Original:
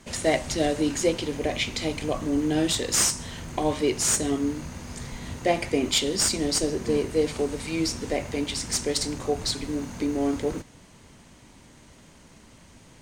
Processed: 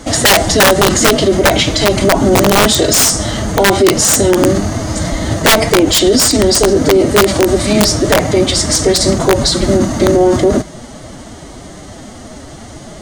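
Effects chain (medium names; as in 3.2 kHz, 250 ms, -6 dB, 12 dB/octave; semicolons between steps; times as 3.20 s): low-pass 11 kHz 12 dB/octave; formant-preserving pitch shift +4.5 st; graphic EQ with 31 bands 250 Hz +5 dB, 630 Hz +9 dB, 2.5 kHz -10 dB; integer overflow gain 15 dB; loudness maximiser +20.5 dB; trim -1 dB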